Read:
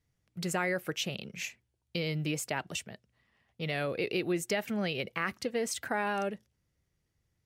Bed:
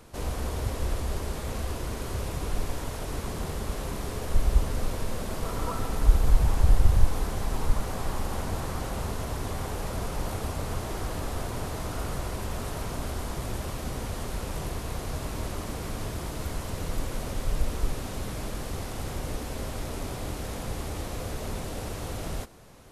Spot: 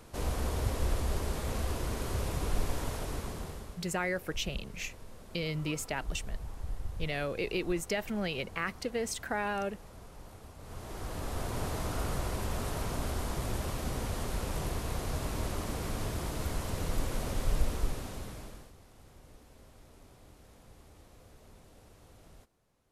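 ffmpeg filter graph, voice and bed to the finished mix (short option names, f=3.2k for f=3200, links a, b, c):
-filter_complex "[0:a]adelay=3400,volume=-1.5dB[a];[1:a]volume=15.5dB,afade=t=out:st=2.89:d=0.91:silence=0.141254,afade=t=in:st=10.58:d=1.07:silence=0.141254,afade=t=out:st=17.55:d=1.18:silence=0.0891251[b];[a][b]amix=inputs=2:normalize=0"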